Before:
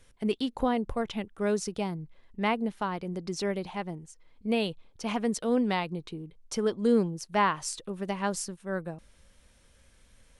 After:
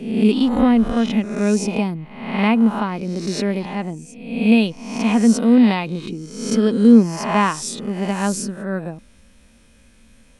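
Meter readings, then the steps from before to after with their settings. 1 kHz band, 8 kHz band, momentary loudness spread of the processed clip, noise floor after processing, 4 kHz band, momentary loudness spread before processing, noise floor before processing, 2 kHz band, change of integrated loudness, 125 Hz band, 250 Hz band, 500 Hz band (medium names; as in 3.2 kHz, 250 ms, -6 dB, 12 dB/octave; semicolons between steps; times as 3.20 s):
+7.0 dB, +9.0 dB, 14 LU, -51 dBFS, +8.5 dB, 12 LU, -61 dBFS, +9.0 dB, +12.5 dB, +12.5 dB, +15.5 dB, +7.5 dB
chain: reverse spectral sustain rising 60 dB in 0.80 s; small resonant body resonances 230/2500 Hz, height 12 dB, ringing for 45 ms; trim +4.5 dB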